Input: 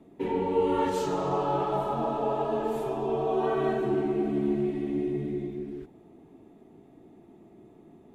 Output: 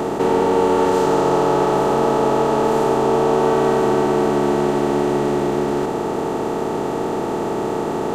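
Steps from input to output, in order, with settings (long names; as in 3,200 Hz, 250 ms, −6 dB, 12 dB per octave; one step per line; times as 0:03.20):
compressor on every frequency bin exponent 0.2
level +3.5 dB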